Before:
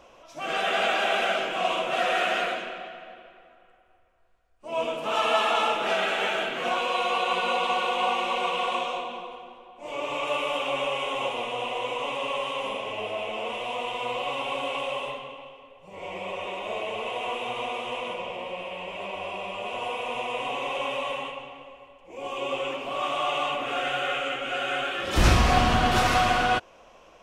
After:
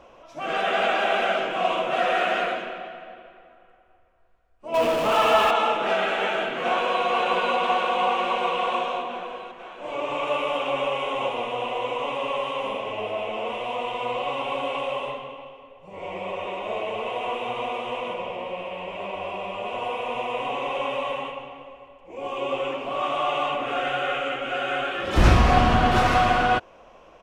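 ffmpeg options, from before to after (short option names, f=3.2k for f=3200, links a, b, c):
-filter_complex "[0:a]asettb=1/sr,asplit=3[a][b][c];[a]atrim=end=4.744[d];[b]atrim=start=4.74:end=5.51,asetpts=PTS-STARTPTS,afade=t=in:d=0.004:c=qsin,afade=t=out:st=0.766:d=0.004:c=qsin,aeval=exprs='val(0)+0.5*0.0596*sgn(val(0))':c=same[e];[c]atrim=start=5.506[f];[d][e]acrossfade=d=0.004:c1=hsin:c2=qsin[g];[g][f]acrossfade=d=0.004:c1=qsin:c2=hsin,asplit=2[h][i];[i]afade=t=in:st=6.16:d=0.01,afade=t=out:st=7.06:d=0.01,aecho=0:1:490|980|1470|1960|2450|2940|3430|3920|4410|4900|5390|5880:0.473151|0.354863|0.266148|0.199611|0.149708|0.112281|0.0842108|0.0631581|0.0473686|0.0355264|0.0266448|0.0199836[j];[h][j]amix=inputs=2:normalize=0,highshelf=f=3.4k:g=-11,volume=3.5dB"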